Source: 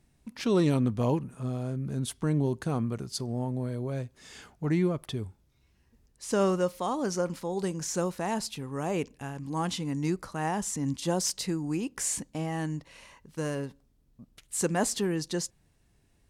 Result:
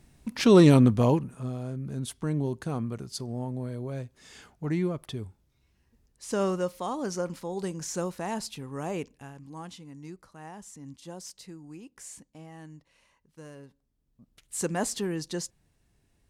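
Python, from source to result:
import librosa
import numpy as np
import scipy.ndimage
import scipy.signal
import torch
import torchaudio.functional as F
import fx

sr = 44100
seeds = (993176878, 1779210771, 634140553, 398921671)

y = fx.gain(x, sr, db=fx.line((0.8, 8.0), (1.55, -2.0), (8.87, -2.0), (9.86, -14.0), (13.59, -14.0), (14.58, -2.0)))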